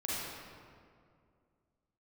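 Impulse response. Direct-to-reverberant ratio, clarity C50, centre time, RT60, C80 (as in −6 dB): −7.5 dB, −5.0 dB, 149 ms, 2.3 s, −1.5 dB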